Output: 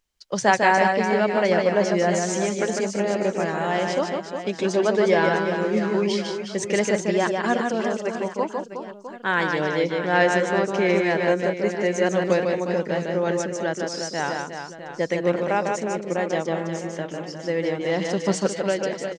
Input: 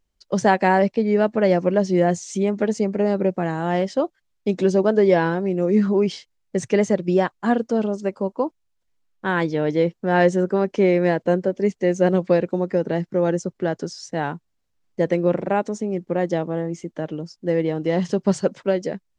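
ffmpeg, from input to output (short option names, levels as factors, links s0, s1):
-af "tiltshelf=f=690:g=-6,aecho=1:1:150|360|654|1066|1642:0.631|0.398|0.251|0.158|0.1,volume=0.794"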